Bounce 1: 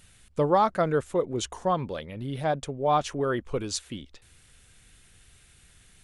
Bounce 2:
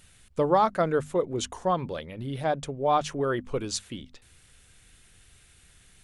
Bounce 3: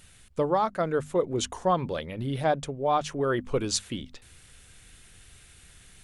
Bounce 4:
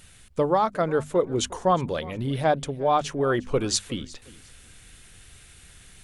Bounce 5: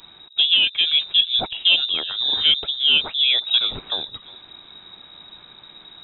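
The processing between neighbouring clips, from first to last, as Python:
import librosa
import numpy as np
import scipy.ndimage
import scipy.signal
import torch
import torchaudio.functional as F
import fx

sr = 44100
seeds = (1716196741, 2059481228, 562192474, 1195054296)

y1 = fx.hum_notches(x, sr, base_hz=50, count=5)
y2 = fx.rider(y1, sr, range_db=4, speed_s=0.5)
y3 = fx.echo_feedback(y2, sr, ms=359, feedback_pct=24, wet_db=-21)
y3 = y3 * librosa.db_to_amplitude(3.0)
y4 = 10.0 ** (-8.5 / 20.0) * np.tanh(y3 / 10.0 ** (-8.5 / 20.0))
y4 = fx.freq_invert(y4, sr, carrier_hz=3800)
y4 = fx.peak_eq(y4, sr, hz=2000.0, db=-8.0, octaves=0.35)
y4 = y4 * librosa.db_to_amplitude(5.5)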